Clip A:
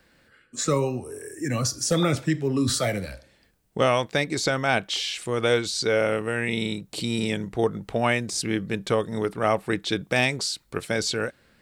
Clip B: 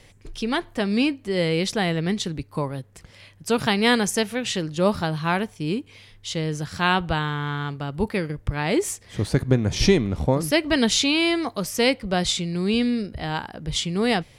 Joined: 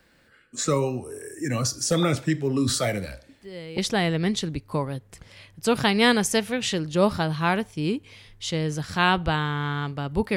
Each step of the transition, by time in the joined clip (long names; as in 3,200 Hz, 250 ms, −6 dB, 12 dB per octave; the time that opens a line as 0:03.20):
clip A
0:03.29: mix in clip B from 0:01.12 0.49 s −15.5 dB
0:03.78: continue with clip B from 0:01.61